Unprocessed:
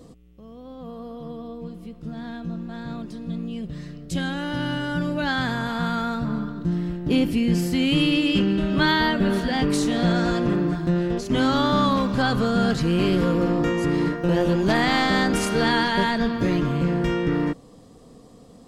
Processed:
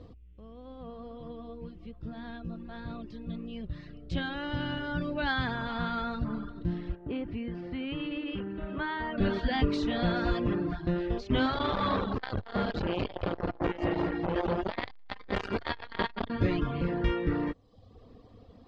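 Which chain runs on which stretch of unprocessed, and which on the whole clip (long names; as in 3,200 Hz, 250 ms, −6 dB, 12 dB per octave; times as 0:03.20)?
0:06.95–0:09.18: low-pass filter 2,000 Hz + downward compressor 2.5 to 1, threshold −24 dBFS + low-shelf EQ 210 Hz −7 dB
0:11.46–0:16.30: multi-tap delay 166/217 ms −9.5/−8 dB + saturating transformer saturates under 820 Hz
whole clip: reverb reduction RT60 0.74 s; low-pass filter 4,200 Hz 24 dB per octave; low shelf with overshoot 120 Hz +6 dB, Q 3; level −4 dB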